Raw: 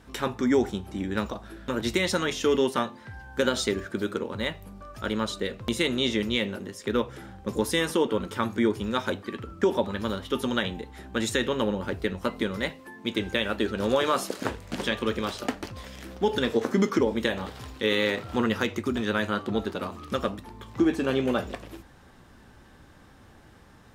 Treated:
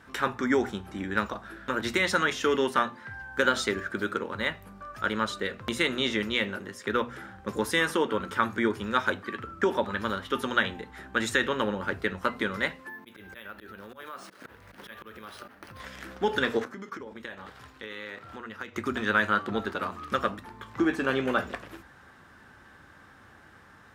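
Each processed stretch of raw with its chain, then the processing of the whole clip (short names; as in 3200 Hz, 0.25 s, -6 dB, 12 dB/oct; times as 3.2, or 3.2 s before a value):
12.89–15.8 careless resampling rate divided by 3×, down filtered, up hold + auto swell 0.292 s + compressor, threshold -40 dBFS
16.64–18.76 gate -32 dBFS, range -7 dB + compressor 5:1, threshold -37 dBFS
whole clip: HPF 60 Hz; bell 1500 Hz +10.5 dB 1.2 oct; notches 60/120/180/240 Hz; gain -3.5 dB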